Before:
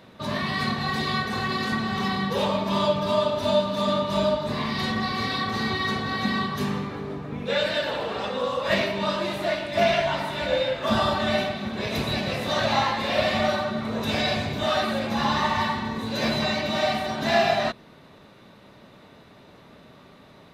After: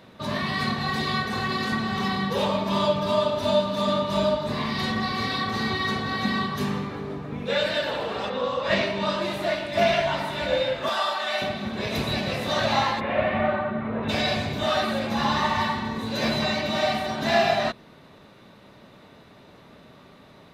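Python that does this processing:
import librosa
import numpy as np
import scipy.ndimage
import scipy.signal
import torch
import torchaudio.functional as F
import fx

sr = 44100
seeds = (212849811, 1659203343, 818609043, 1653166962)

y = fx.lowpass(x, sr, hz=fx.line((8.29, 4500.0), (9.2, 11000.0)), slope=12, at=(8.29, 9.2), fade=0.02)
y = fx.highpass(y, sr, hz=720.0, slope=12, at=(10.89, 11.42))
y = fx.lowpass(y, sr, hz=2400.0, slope=24, at=(12.99, 14.08), fade=0.02)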